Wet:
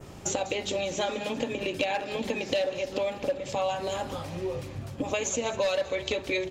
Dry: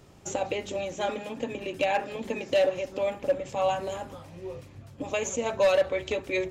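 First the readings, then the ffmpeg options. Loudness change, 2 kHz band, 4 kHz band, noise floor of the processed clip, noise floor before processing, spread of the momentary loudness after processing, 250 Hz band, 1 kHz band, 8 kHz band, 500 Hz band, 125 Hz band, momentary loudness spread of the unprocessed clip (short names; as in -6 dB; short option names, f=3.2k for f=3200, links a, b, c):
-1.5 dB, +0.5 dB, +4.0 dB, -42 dBFS, -50 dBFS, 6 LU, +2.0 dB, -2.0 dB, n/a, -2.0 dB, +4.0 dB, 16 LU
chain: -af "adynamicequalizer=threshold=0.00316:dfrequency=4200:dqfactor=1.3:tfrequency=4200:tqfactor=1.3:attack=5:release=100:ratio=0.375:range=4:mode=boostabove:tftype=bell,acompressor=threshold=-37dB:ratio=4,aecho=1:1:198|396|594|792|990|1188:0.141|0.0848|0.0509|0.0305|0.0183|0.011,volume=9dB"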